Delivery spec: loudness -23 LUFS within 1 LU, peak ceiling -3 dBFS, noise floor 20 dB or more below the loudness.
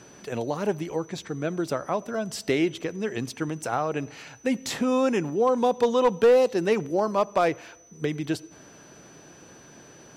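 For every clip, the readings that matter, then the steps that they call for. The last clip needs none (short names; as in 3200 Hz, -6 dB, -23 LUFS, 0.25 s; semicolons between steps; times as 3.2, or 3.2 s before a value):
clipped 0.4%; flat tops at -13.0 dBFS; steady tone 6000 Hz; tone level -53 dBFS; loudness -26.0 LUFS; peak -13.0 dBFS; loudness target -23.0 LUFS
-> clip repair -13 dBFS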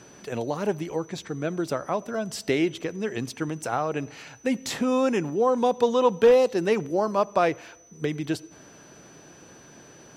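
clipped 0.0%; steady tone 6000 Hz; tone level -53 dBFS
-> notch 6000 Hz, Q 30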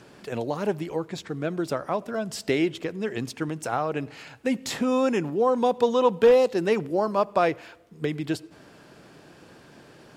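steady tone none; loudness -25.5 LUFS; peak -7.5 dBFS; loudness target -23.0 LUFS
-> gain +2.5 dB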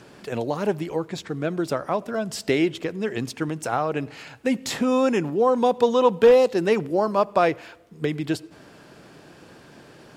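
loudness -23.0 LUFS; peak -5.0 dBFS; noise floor -49 dBFS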